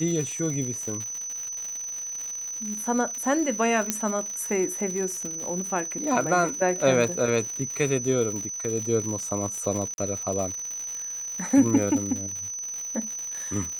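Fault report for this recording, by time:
crackle 170 per s -31 dBFS
whine 6 kHz -31 dBFS
3.90 s: pop -7 dBFS
9.94–9.98 s: dropout 41 ms

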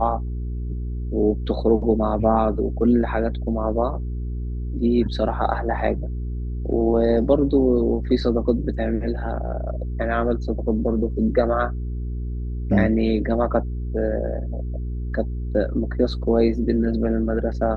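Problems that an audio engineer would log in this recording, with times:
hum 60 Hz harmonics 7 -27 dBFS

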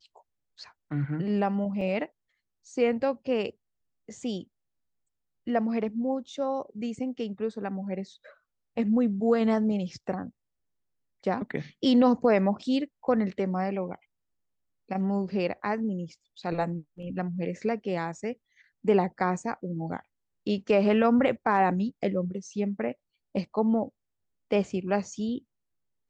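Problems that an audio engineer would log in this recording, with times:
1.81 s: dropout 3.2 ms

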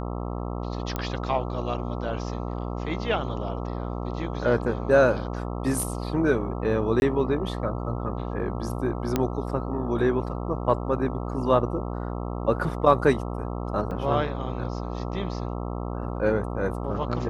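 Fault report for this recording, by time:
buzz 60 Hz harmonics 22 -31 dBFS
0.96 s: pop -14 dBFS
7.00–7.02 s: dropout 21 ms
9.16 s: pop -9 dBFS
13.91 s: dropout 3.8 ms

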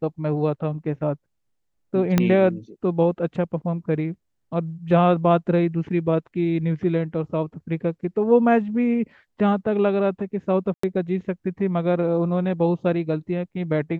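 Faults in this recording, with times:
2.18 s: pop -5 dBFS
10.74–10.83 s: dropout 94 ms

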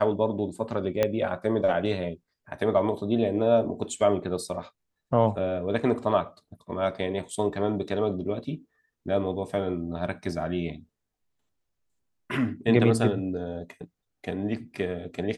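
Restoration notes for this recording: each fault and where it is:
1.03 s: pop -10 dBFS

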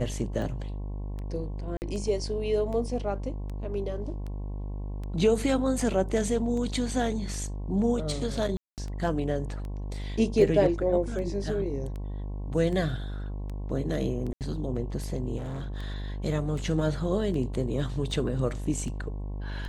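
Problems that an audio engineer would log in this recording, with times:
buzz 50 Hz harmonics 22 -34 dBFS
tick 78 rpm
1.77–1.82 s: dropout 49 ms
8.57–8.78 s: dropout 208 ms
14.33–14.41 s: dropout 78 ms
15.37–15.78 s: clipped -31.5 dBFS

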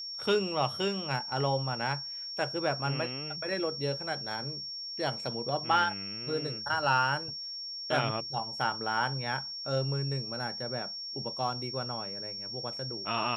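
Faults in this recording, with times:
whine 5.5 kHz -37 dBFS

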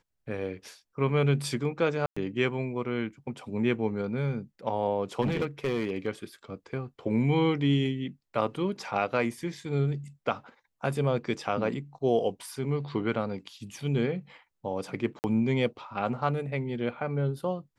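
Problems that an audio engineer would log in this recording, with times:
2.06–2.17 s: dropout 105 ms
5.21–6.07 s: clipped -23.5 dBFS
15.19–15.24 s: dropout 49 ms

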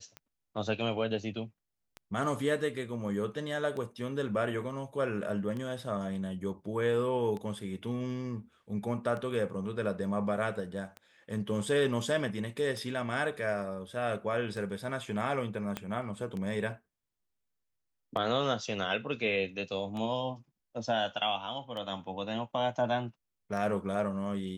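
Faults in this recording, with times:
tick 33 1/3 rpm -27 dBFS
15.77 s: pop -19 dBFS

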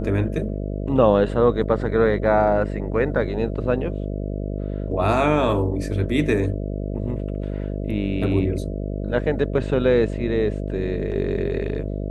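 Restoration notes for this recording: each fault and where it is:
buzz 50 Hz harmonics 13 -27 dBFS

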